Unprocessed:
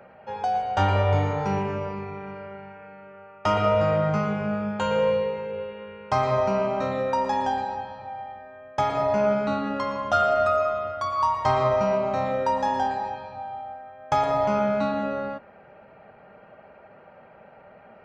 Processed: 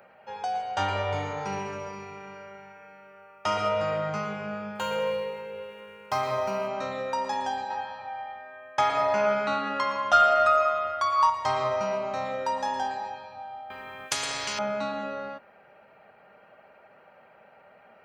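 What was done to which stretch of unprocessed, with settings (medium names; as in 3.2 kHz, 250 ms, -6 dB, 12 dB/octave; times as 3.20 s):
1.30–3.69 s: feedback echo behind a high-pass 68 ms, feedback 81%, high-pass 4.9 kHz, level -6.5 dB
4.75–6.68 s: median filter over 5 samples
7.70–11.30 s: peaking EQ 1.6 kHz +7 dB 2.5 oct
13.70–14.59 s: spectrum-flattening compressor 4:1
whole clip: tilt EQ +2.5 dB/octave; trim -4 dB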